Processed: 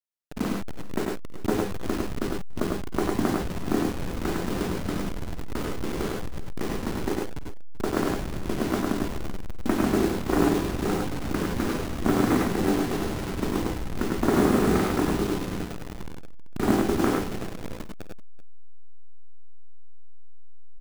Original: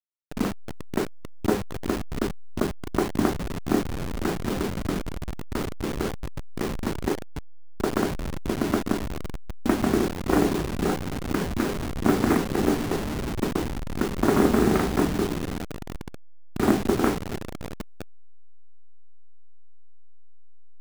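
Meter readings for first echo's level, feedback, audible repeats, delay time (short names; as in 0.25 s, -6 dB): -13.5 dB, no steady repeat, 3, 51 ms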